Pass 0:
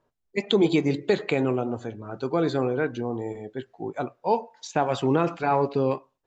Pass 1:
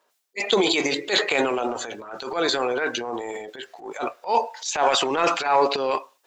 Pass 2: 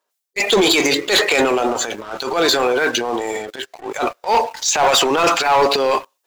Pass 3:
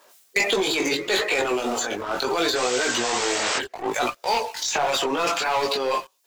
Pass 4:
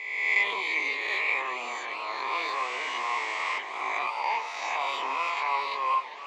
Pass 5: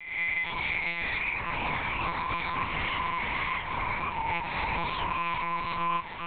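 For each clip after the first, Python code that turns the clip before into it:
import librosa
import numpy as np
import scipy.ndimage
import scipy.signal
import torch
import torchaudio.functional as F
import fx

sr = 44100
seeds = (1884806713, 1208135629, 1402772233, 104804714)

y1 = scipy.signal.sosfilt(scipy.signal.butter(2, 540.0, 'highpass', fs=sr, output='sos'), x)
y1 = fx.high_shelf(y1, sr, hz=2000.0, db=10.0)
y1 = fx.transient(y1, sr, attack_db=-11, sustain_db=9)
y1 = y1 * 10.0 ** (5.0 / 20.0)
y2 = fx.high_shelf(y1, sr, hz=5400.0, db=6.5)
y2 = fx.leveller(y2, sr, passes=3)
y2 = y2 * 10.0 ** (-3.0 / 20.0)
y3 = fx.spec_paint(y2, sr, seeds[0], shape='noise', start_s=2.55, length_s=1.04, low_hz=430.0, high_hz=8300.0, level_db=-21.0)
y3 = fx.chorus_voices(y3, sr, voices=2, hz=0.71, base_ms=19, depth_ms=3.2, mix_pct=45)
y3 = fx.band_squash(y3, sr, depth_pct=100)
y3 = y3 * 10.0 ** (-5.0 / 20.0)
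y4 = fx.spec_swells(y3, sr, rise_s=1.33)
y4 = fx.double_bandpass(y4, sr, hz=1500.0, octaves=1.0)
y4 = fx.echo_warbled(y4, sr, ms=395, feedback_pct=78, rate_hz=2.8, cents=131, wet_db=-14.0)
y5 = fx.recorder_agc(y4, sr, target_db=-14.5, rise_db_per_s=33.0, max_gain_db=30)
y5 = fx.lpc_monotone(y5, sr, seeds[1], pitch_hz=170.0, order=8)
y5 = y5 * 10.0 ** (-6.5 / 20.0)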